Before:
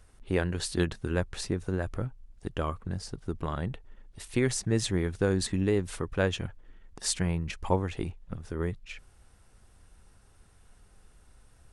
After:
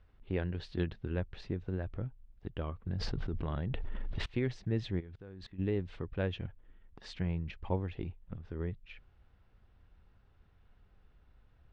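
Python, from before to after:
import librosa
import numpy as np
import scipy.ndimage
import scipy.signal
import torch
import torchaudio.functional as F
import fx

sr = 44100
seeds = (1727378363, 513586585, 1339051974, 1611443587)

y = scipy.signal.sosfilt(scipy.signal.butter(4, 3700.0, 'lowpass', fs=sr, output='sos'), x)
y = fx.peak_eq(y, sr, hz=76.0, db=4.0, octaves=3.0)
y = fx.level_steps(y, sr, step_db=20, at=(4.99, 5.58), fade=0.02)
y = fx.dynamic_eq(y, sr, hz=1200.0, q=1.5, threshold_db=-50.0, ratio=4.0, max_db=-5)
y = fx.env_flatten(y, sr, amount_pct=100, at=(2.87, 4.26))
y = y * 10.0 ** (-8.0 / 20.0)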